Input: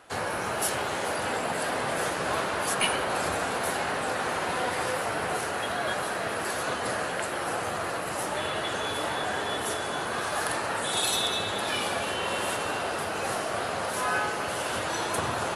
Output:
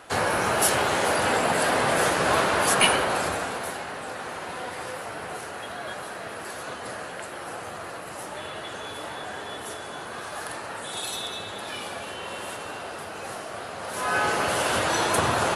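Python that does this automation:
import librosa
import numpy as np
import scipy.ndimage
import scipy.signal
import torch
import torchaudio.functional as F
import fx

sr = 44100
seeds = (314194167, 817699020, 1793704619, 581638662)

y = fx.gain(x, sr, db=fx.line((2.86, 6.5), (3.86, -5.5), (13.77, -5.5), (14.31, 6.0)))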